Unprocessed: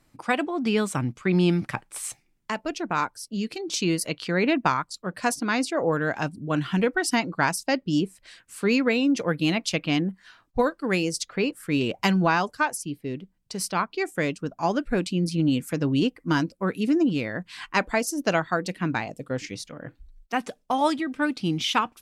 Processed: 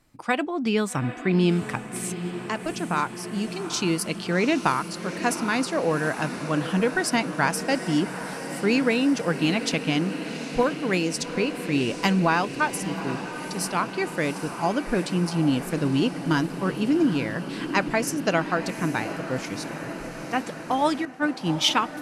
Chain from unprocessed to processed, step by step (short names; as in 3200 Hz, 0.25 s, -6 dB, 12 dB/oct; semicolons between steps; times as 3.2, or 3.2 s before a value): diffused feedback echo 0.793 s, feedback 73%, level -11 dB; 21.05–21.69 three-band expander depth 100%